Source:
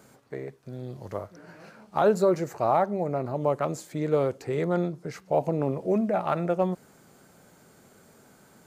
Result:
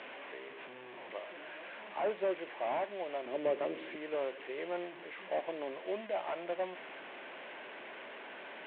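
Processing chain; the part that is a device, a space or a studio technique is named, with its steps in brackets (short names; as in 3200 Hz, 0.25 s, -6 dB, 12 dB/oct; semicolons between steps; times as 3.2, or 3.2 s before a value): digital answering machine (BPF 330–3400 Hz; delta modulation 16 kbps, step -33 dBFS; speaker cabinet 450–4300 Hz, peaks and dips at 460 Hz -6 dB, 790 Hz -5 dB, 1300 Hz -10 dB); 3.26–3.96 resonant low shelf 570 Hz +7.5 dB, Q 1.5; gain -4 dB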